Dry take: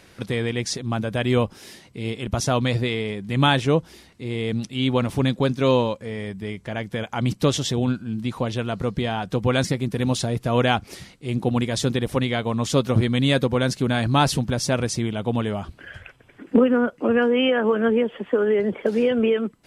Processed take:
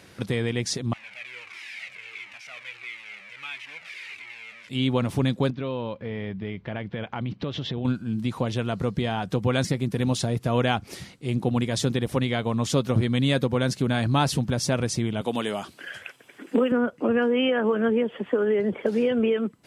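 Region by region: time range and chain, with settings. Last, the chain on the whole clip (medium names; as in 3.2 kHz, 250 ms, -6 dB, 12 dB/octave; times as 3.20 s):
0.93–4.69 s: one-bit delta coder 64 kbps, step -16.5 dBFS + band-pass filter 2.3 kHz, Q 6.3 + Shepard-style flanger falling 1.5 Hz
5.50–7.85 s: low-pass 3.7 kHz 24 dB/octave + compression 4:1, threshold -28 dBFS
15.21–16.72 s: high-pass 260 Hz + treble shelf 3.1 kHz +11.5 dB
whole clip: high-pass 88 Hz; bass shelf 150 Hz +4.5 dB; compression 1.5:1, threshold -25 dBFS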